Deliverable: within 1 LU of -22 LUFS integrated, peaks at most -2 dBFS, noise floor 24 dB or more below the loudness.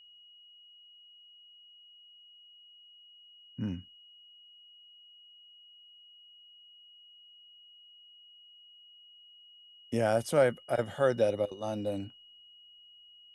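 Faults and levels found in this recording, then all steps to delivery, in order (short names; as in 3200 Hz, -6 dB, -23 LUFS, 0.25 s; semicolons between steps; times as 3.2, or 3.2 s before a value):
steady tone 2900 Hz; tone level -54 dBFS; loudness -31.0 LUFS; peak -13.5 dBFS; loudness target -22.0 LUFS
-> notch 2900 Hz, Q 30; gain +9 dB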